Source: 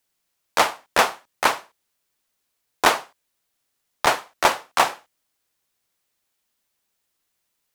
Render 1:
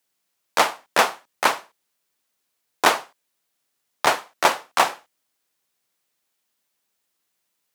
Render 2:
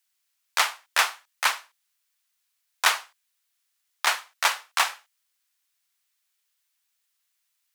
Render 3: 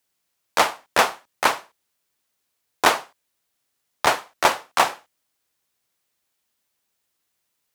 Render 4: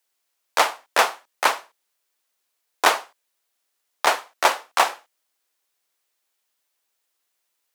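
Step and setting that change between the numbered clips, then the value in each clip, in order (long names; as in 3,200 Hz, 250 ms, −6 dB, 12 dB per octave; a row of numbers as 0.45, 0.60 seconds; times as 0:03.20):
high-pass filter, corner frequency: 130, 1,400, 45, 390 Hertz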